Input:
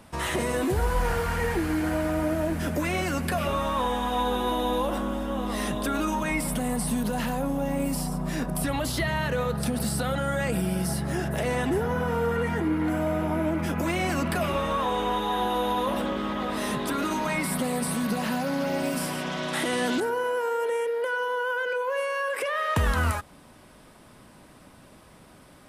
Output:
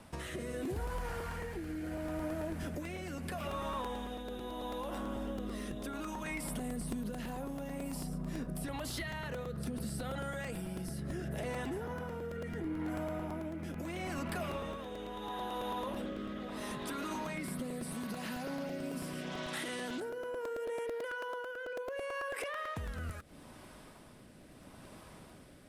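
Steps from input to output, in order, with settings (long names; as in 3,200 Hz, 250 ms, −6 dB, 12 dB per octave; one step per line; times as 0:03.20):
downward compressor 6 to 1, threshold −34 dBFS, peak gain reduction 13.5 dB
rotating-speaker cabinet horn 0.75 Hz
regular buffer underruns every 0.11 s, samples 128, repeat, from 0:00.65
level −1 dB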